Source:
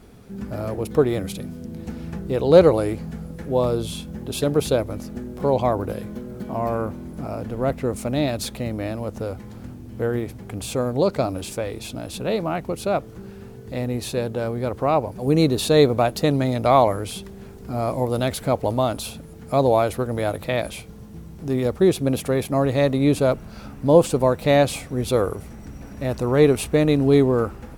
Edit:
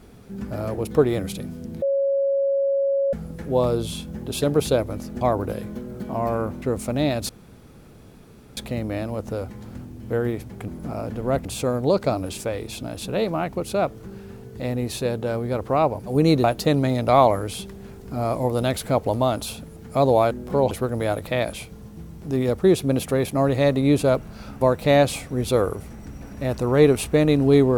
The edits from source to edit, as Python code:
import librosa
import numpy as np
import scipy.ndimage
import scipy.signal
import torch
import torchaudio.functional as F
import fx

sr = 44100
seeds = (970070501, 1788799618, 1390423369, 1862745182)

y = fx.edit(x, sr, fx.bleep(start_s=1.82, length_s=1.31, hz=552.0, db=-18.0),
    fx.move(start_s=5.21, length_s=0.4, to_s=19.88),
    fx.move(start_s=7.02, length_s=0.77, to_s=10.57),
    fx.insert_room_tone(at_s=8.46, length_s=1.28),
    fx.cut(start_s=15.56, length_s=0.45),
    fx.cut(start_s=23.78, length_s=0.43), tone=tone)